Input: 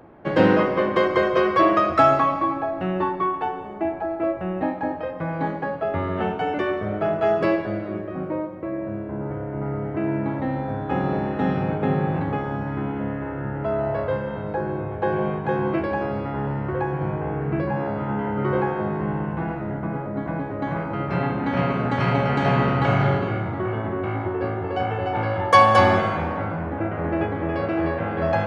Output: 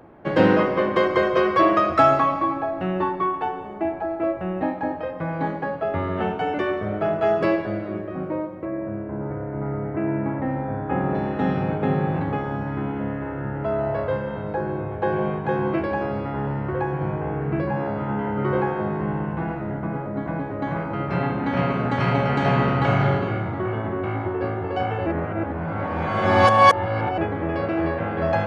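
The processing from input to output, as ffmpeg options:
-filter_complex "[0:a]asettb=1/sr,asplit=3[a][b][c];[a]atrim=end=8.654[d];[b]atrim=start=8.65:end=11.15,asetpts=PTS-STARTPTS,afade=t=in:d=0.004:c=qsin,afade=t=out:st=2.496:d=0.004:c=qsin,lowpass=f=2.5k:w=0.5412,lowpass=f=2.5k:w=1.3066[e];[c]atrim=start=11.146[f];[d][e]acrossfade=d=0.004:c1=hsin:c2=qsin[g];[g][f]acrossfade=d=0.004:c1=qsin:c2=hsin,asplit=3[h][i][j];[h]atrim=end=25.062[k];[i]atrim=start=25.058:end=27.182,asetpts=PTS-STARTPTS,areverse[l];[j]atrim=start=27.178[m];[k][l]acrossfade=d=0.004:c1=hsin:c2=hsin[n];[n][m]acrossfade=d=0.004:c1=hsin:c2=hsin"

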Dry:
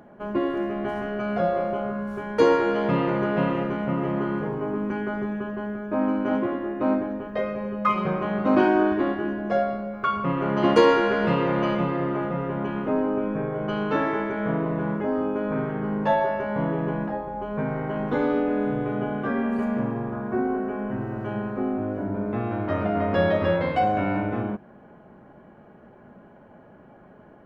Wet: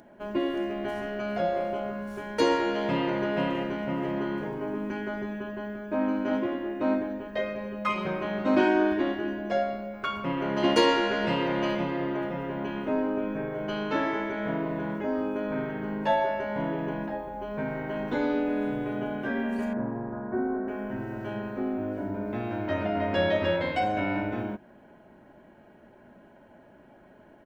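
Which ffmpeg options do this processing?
-filter_complex "[0:a]asettb=1/sr,asplit=3[a][b][c];[a]atrim=end=19.734[d];[b]atrim=start=19.73:end=20.68,asetpts=PTS-STARTPTS,afade=t=in:d=0.004:c=qsin,afade=t=out:st=0.946:d=0.004:c=qsin,lowpass=f=1.6k:w=0.5412,lowpass=f=1.6k:w=1.3066[e];[c]atrim=start=20.676[f];[d][e]acrossfade=d=0.004:c1=hsin:c2=qsin[g];[g][f]acrossfade=d=0.004:c1=qsin:c2=hsin,highshelf=f=2.3k:g=11,bandreject=f=1.2k:w=6.1,aecho=1:1:3.2:0.32,volume=-5dB"

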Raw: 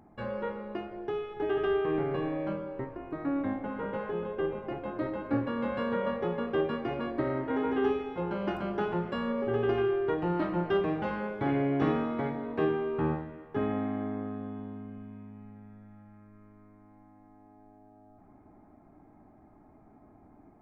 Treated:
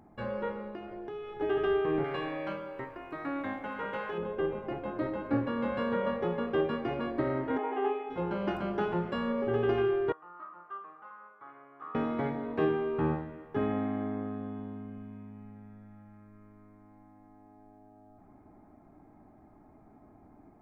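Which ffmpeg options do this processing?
-filter_complex "[0:a]asettb=1/sr,asplit=3[a][b][c];[a]atrim=end=0.684[d];[b]atrim=start=0.68:end=1.41,asetpts=PTS-STARTPTS,afade=t=in:d=0.004:c=qsin,afade=t=out:st=0.726:d=0.004:c=qsin,acompressor=threshold=-38dB:ratio=4:attack=3.2:release=140:knee=1:detection=peak[e];[c]atrim=start=1.406[f];[d][e]acrossfade=d=0.004:c1=hsin:c2=qsin[g];[g][f]acrossfade=d=0.004:c1=qsin:c2=hsin,asettb=1/sr,asplit=3[h][i][j];[h]atrim=end=2.044[k];[i]atrim=start=2.04:end=4.18,asetpts=PTS-STARTPTS,afade=t=in:d=0.004:c=qsin,afade=t=out:st=2.136:d=0.004:c=qsin,tiltshelf=f=770:g=-8[l];[j]atrim=start=4.176[m];[k][l]acrossfade=d=0.004:c1=hsin:c2=qsin[n];[n][m]acrossfade=d=0.004:c1=qsin:c2=hsin,asplit=3[o][p][q];[o]afade=t=out:st=7.57:d=0.02[r];[p]highpass=f=360:w=0.5412,highpass=f=360:w=1.3066,equalizer=f=510:t=q:w=4:g=-8,equalizer=f=740:t=q:w=4:g=8,equalizer=f=1.5k:t=q:w=4:g=-8,lowpass=f=2.8k:w=0.5412,lowpass=f=2.8k:w=1.3066,afade=t=in:st=7.57:d=0.02,afade=t=out:st=8.09:d=0.02[s];[q]afade=t=in:st=8.09:d=0.02[t];[r][s][t]amix=inputs=3:normalize=0,asettb=1/sr,asplit=3[u][v][w];[u]atrim=end=10.124[x];[v]atrim=start=10.12:end=11.95,asetpts=PTS-STARTPTS,afade=t=in:d=0.004:c=qsin,afade=t=out:st=1.826:d=0.004:c=qsin,bandpass=f=1.2k:t=q:w=11[y];[w]atrim=start=11.946[z];[x][y]acrossfade=d=0.004:c1=hsin:c2=qsin[aa];[aa][z]acrossfade=d=0.004:c1=qsin:c2=hsin"

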